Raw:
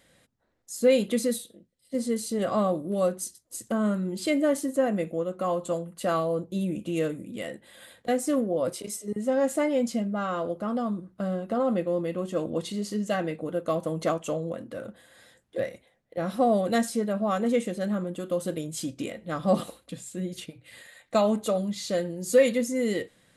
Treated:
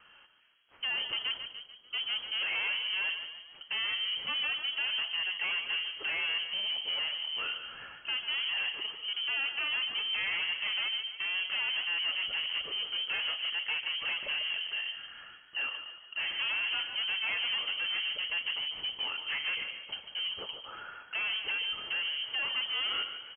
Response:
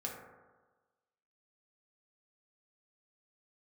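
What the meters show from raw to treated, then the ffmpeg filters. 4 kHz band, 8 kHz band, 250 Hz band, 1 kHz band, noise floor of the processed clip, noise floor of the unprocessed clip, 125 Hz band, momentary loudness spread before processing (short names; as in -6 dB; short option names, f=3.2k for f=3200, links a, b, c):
+14.0 dB, under -40 dB, under -30 dB, -12.5 dB, -56 dBFS, -67 dBFS, under -25 dB, 12 LU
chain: -filter_complex "[0:a]lowshelf=f=170:g=-6.5,bandreject=f=710:w=22,acrossover=split=220|1500[a][b][c];[a]acompressor=threshold=-45dB:ratio=6[d];[d][b][c]amix=inputs=3:normalize=0,alimiter=limit=-19.5dB:level=0:latency=1:release=274,asoftclip=type=tanh:threshold=-37.5dB,asplit=2[e][f];[f]asplit=6[g][h][i][j][k][l];[g]adelay=146,afreqshift=-37,volume=-9dB[m];[h]adelay=292,afreqshift=-74,volume=-15.2dB[n];[i]adelay=438,afreqshift=-111,volume=-21.4dB[o];[j]adelay=584,afreqshift=-148,volume=-27.6dB[p];[k]adelay=730,afreqshift=-185,volume=-33.8dB[q];[l]adelay=876,afreqshift=-222,volume=-40dB[r];[m][n][o][p][q][r]amix=inputs=6:normalize=0[s];[e][s]amix=inputs=2:normalize=0,lowpass=f=2.8k:t=q:w=0.5098,lowpass=f=2.8k:t=q:w=0.6013,lowpass=f=2.8k:t=q:w=0.9,lowpass=f=2.8k:t=q:w=2.563,afreqshift=-3300,volume=6dB"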